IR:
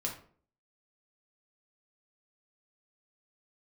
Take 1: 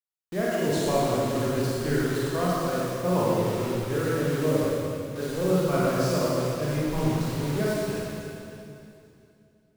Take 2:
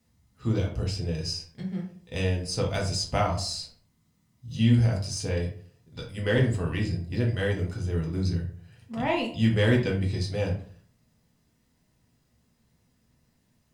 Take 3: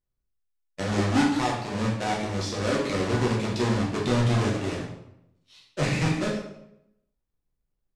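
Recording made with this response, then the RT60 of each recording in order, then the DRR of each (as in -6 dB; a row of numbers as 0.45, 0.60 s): 2; 2.7, 0.50, 0.80 s; -7.5, -1.5, -4.5 dB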